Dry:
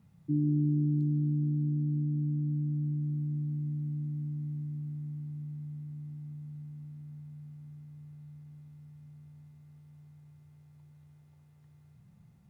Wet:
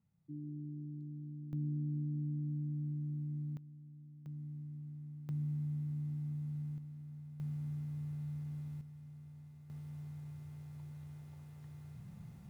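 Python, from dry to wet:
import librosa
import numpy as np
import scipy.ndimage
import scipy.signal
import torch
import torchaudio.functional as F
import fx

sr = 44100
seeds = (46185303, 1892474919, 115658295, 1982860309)

y = fx.gain(x, sr, db=fx.steps((0.0, -17.0), (1.53, -7.0), (3.57, -19.5), (4.26, -9.0), (5.29, 3.0), (6.78, -3.0), (7.4, 7.5), (8.81, -0.5), (9.7, 8.0)))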